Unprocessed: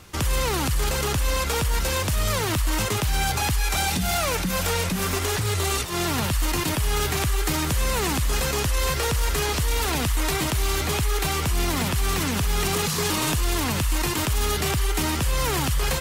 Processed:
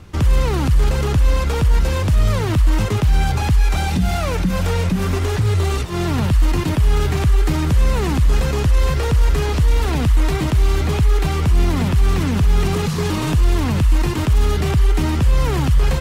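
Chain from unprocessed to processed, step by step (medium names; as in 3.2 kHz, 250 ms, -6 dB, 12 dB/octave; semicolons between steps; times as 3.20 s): low-pass 3.6 kHz 6 dB/octave; bass shelf 350 Hz +10.5 dB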